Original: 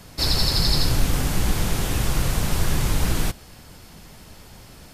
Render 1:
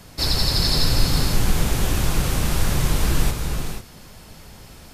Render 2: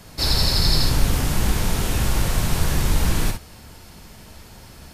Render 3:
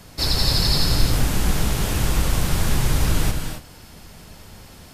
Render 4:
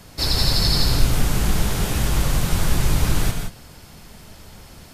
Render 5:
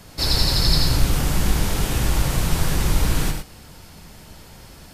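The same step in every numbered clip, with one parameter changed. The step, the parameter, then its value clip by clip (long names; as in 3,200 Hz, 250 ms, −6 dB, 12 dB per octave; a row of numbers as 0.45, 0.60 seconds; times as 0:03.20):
reverb whose tail is shaped and stops, gate: 520, 80, 300, 200, 130 milliseconds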